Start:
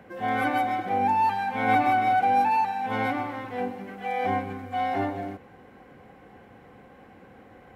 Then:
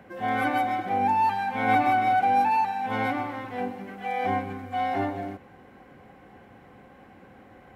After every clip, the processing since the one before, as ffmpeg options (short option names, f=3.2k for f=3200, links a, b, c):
-af "bandreject=f=470:w=12"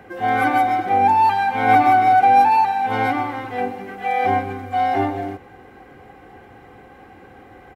-af "aecho=1:1:2.5:0.45,volume=6dB"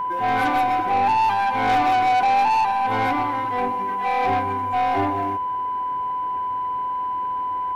-af "aeval=exprs='0.708*(cos(1*acos(clip(val(0)/0.708,-1,1)))-cos(1*PI/2))+0.02*(cos(8*acos(clip(val(0)/0.708,-1,1)))-cos(8*PI/2))':c=same,aeval=exprs='val(0)+0.0794*sin(2*PI*1000*n/s)':c=same,asoftclip=type=tanh:threshold=-15dB"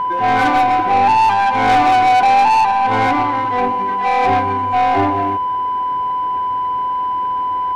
-af "adynamicsmooth=sensitivity=4:basefreq=4.3k,volume=6.5dB"